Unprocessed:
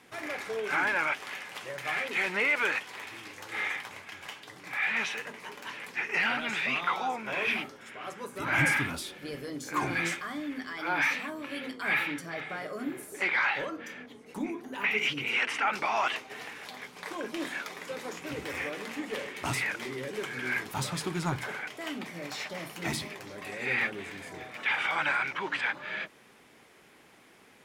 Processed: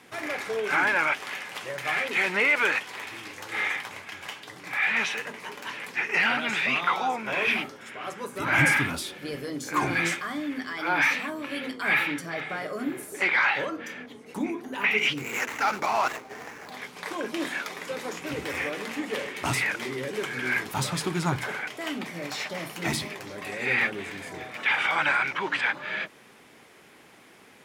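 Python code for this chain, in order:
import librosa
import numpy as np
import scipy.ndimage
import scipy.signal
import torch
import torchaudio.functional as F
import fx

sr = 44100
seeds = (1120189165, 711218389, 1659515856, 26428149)

y = fx.median_filter(x, sr, points=15, at=(15.17, 16.72))
y = scipy.signal.sosfilt(scipy.signal.butter(2, 57.0, 'highpass', fs=sr, output='sos'), y)
y = y * 10.0 ** (4.5 / 20.0)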